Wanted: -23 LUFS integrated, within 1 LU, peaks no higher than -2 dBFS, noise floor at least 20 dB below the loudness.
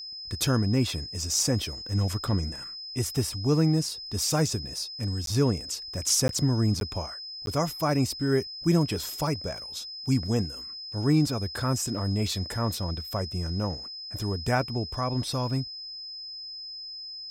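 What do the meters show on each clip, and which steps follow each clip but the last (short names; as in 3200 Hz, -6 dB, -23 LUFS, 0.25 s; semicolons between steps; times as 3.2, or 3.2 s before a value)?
dropouts 4; longest dropout 12 ms; steady tone 5100 Hz; tone level -37 dBFS; loudness -28.0 LUFS; peak -11.0 dBFS; loudness target -23.0 LUFS
-> interpolate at 5.26/6.28/6.8/7.46, 12 ms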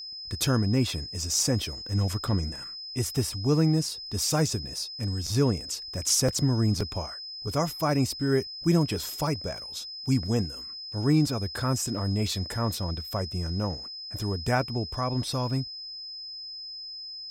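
dropouts 0; steady tone 5100 Hz; tone level -37 dBFS
-> notch 5100 Hz, Q 30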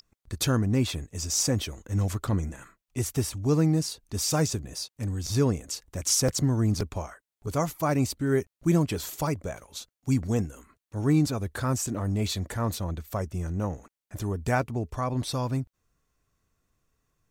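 steady tone none; loudness -28.0 LUFS; peak -11.5 dBFS; loudness target -23.0 LUFS
-> gain +5 dB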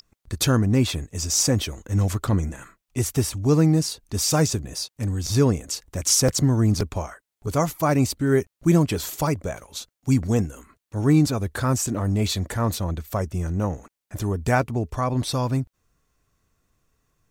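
loudness -23.0 LUFS; peak -6.5 dBFS; noise floor -85 dBFS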